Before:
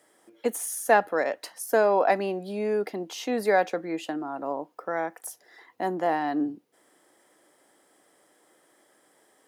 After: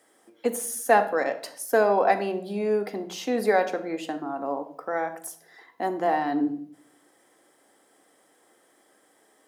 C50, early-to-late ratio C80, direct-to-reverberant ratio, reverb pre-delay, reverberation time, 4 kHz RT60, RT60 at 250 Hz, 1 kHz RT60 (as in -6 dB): 12.5 dB, 16.0 dB, 7.0 dB, 3 ms, 0.60 s, 0.40 s, 0.85 s, 0.50 s